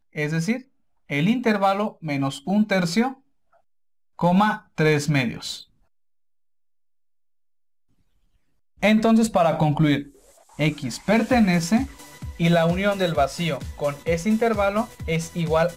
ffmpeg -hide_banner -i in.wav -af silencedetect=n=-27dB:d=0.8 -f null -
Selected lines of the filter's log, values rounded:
silence_start: 3.11
silence_end: 4.19 | silence_duration: 1.08
silence_start: 5.56
silence_end: 8.83 | silence_duration: 3.27